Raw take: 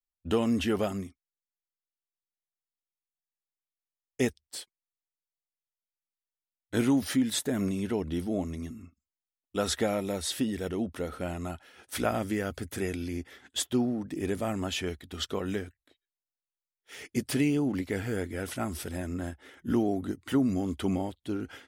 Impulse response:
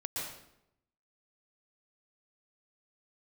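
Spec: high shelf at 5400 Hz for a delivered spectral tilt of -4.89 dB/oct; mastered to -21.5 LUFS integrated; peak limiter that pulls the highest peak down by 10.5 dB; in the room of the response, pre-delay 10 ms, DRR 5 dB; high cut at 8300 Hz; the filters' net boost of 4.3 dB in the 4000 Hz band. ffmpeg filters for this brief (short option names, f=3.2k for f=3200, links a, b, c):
-filter_complex "[0:a]lowpass=8.3k,equalizer=f=4k:t=o:g=7,highshelf=f=5.4k:g=-4,alimiter=level_in=1dB:limit=-24dB:level=0:latency=1,volume=-1dB,asplit=2[a][b];[1:a]atrim=start_sample=2205,adelay=10[c];[b][c]afir=irnorm=-1:irlink=0,volume=-7.5dB[d];[a][d]amix=inputs=2:normalize=0,volume=12.5dB"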